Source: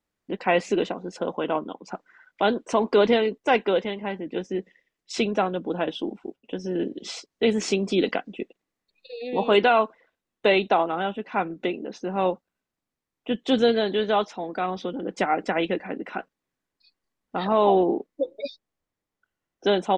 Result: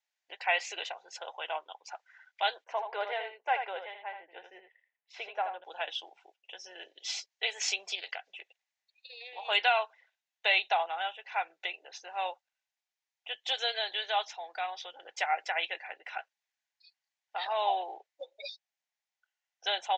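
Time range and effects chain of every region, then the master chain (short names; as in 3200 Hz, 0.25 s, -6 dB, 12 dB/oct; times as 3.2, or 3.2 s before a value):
2.64–5.64 LPF 1500 Hz + echo 80 ms -7.5 dB
7.95–9.45 compressor 2:1, threshold -32 dBFS + Doppler distortion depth 0.13 ms
whole clip: elliptic band-pass 810–6800 Hz, stop band 50 dB; bell 1100 Hz -12.5 dB 0.7 oct; notch 1300 Hz, Q 21; gain +1 dB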